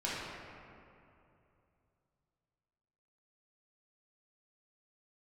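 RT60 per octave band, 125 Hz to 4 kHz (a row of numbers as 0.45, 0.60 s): 3.6, 2.9, 2.9, 2.6, 2.2, 1.4 s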